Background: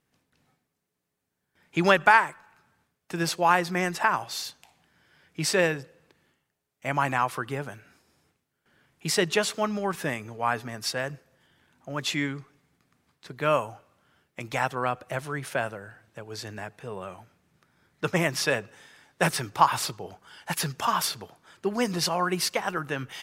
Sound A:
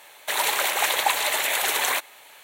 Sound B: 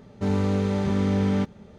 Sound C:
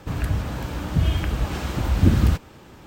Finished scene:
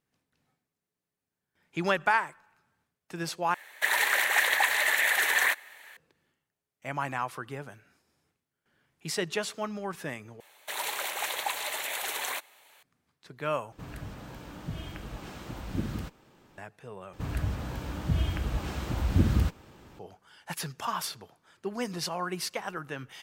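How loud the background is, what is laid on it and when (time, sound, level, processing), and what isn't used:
background -7 dB
3.54 replace with A -7 dB + bell 1800 Hz +14.5 dB 0.45 oct
10.4 replace with A -10 dB
13.72 replace with C -12.5 dB + bell 72 Hz -13 dB 0.75 oct
17.13 replace with C -7 dB
not used: B

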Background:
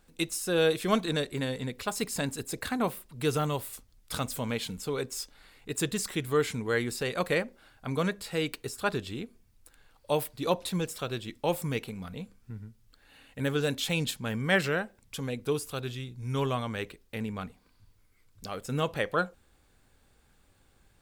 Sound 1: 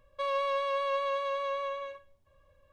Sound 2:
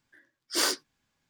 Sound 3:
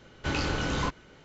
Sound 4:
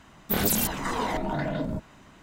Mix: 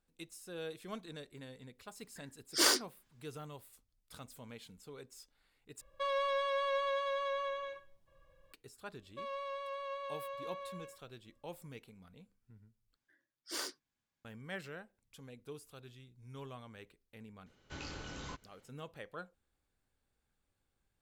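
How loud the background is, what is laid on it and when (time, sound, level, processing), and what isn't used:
background -18.5 dB
2.03 add 2 -1.5 dB
5.81 replace with 1 -2.5 dB + comb 6 ms, depth 52%
8.98 add 1 -11.5 dB + mismatched tape noise reduction decoder only
12.96 replace with 2 -14 dB
17.46 add 3 -17 dB + high shelf 5000 Hz +8.5 dB
not used: 4

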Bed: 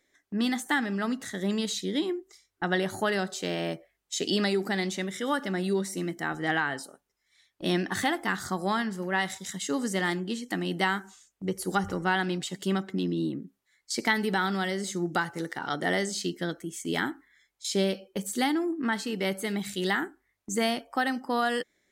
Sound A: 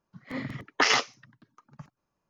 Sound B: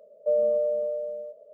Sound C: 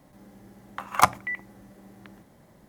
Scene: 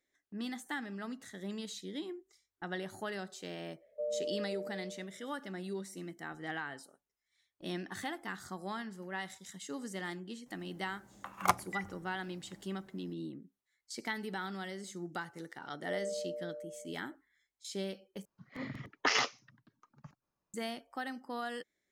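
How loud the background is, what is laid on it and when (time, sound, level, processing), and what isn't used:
bed -12.5 dB
3.72 add B -13.5 dB
10.46 add C -10 dB
15.62 add B -15 dB
18.25 replace with A -7 dB

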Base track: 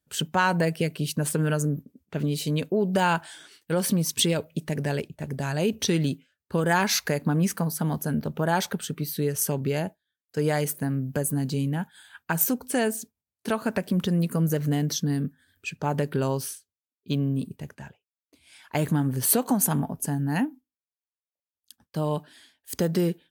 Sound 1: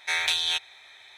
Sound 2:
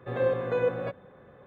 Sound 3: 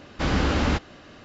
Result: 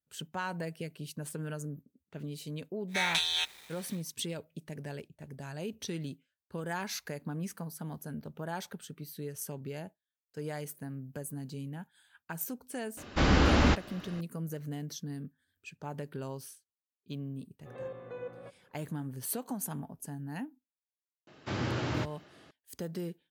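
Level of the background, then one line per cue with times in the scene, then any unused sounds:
base track -14 dB
2.87 add 1 -4.5 dB, fades 0.10 s + bit-crush 8-bit
12.97 add 3 -1 dB
17.59 add 2 -15.5 dB + notch 1600 Hz, Q 21
21.27 add 3 -10.5 dB + frequency shift +53 Hz

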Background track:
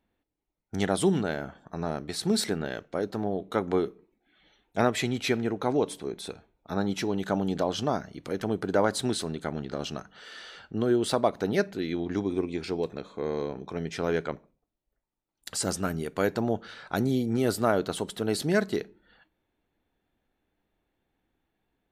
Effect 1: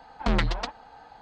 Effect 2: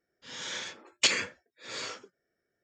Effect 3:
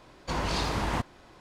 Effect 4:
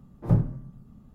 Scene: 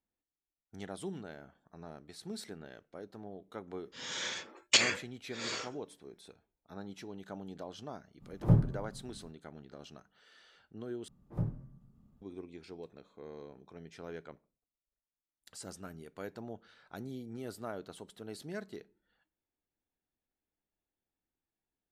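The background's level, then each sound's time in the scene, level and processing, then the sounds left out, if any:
background track -17 dB
3.7 add 2 -0.5 dB
8.19 add 4 -3 dB, fades 0.05 s
11.08 replace with 4 -13 dB
not used: 1, 3

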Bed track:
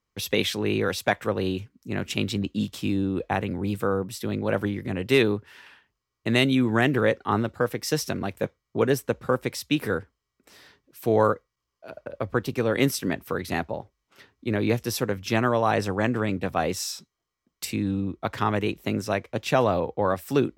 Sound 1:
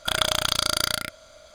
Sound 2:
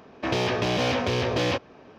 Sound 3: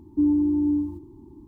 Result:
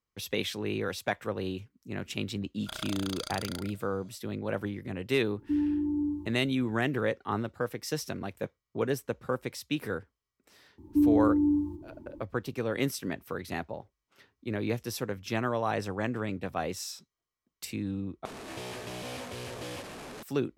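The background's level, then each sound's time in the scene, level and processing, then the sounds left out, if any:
bed track -7.5 dB
2.61 add 1 -16 dB
5.32 add 3 -7.5 dB
10.78 add 3 -2.5 dB
18.25 replace with 2 -15.5 dB + delta modulation 64 kbps, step -22 dBFS

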